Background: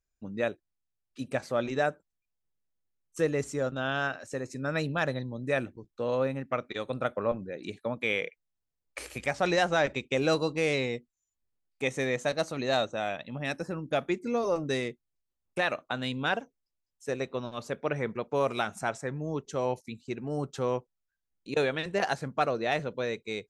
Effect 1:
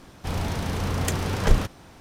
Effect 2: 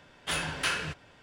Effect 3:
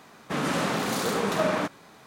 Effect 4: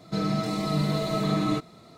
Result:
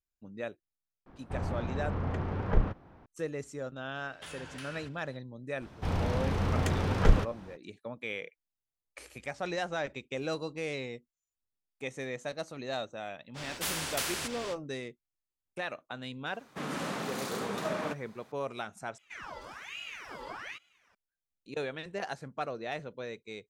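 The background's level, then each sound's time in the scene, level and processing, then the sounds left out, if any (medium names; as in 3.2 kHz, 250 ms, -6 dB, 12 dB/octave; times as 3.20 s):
background -8.5 dB
1.06 s: add 1 -6.5 dB + low-pass 1.5 kHz
3.95 s: add 2 -5.5 dB + compression, threshold -37 dBFS
5.58 s: add 1 -2.5 dB, fades 0.05 s + low-pass 2.4 kHz 6 dB/octave
13.34 s: add 2 -3.5 dB, fades 0.05 s + spectrum-flattening compressor 4:1
16.26 s: add 3 -9 dB
18.98 s: replace with 4 -15 dB + ring modulator with a swept carrier 1.7 kHz, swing 60%, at 1.2 Hz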